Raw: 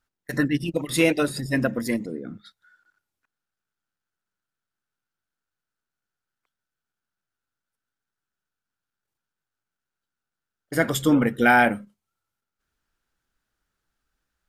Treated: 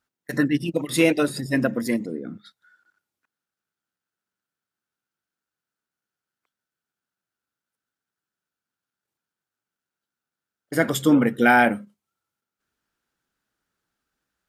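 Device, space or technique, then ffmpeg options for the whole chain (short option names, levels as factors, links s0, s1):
filter by subtraction: -filter_complex "[0:a]asplit=2[s0][s1];[s1]lowpass=220,volume=-1[s2];[s0][s2]amix=inputs=2:normalize=0"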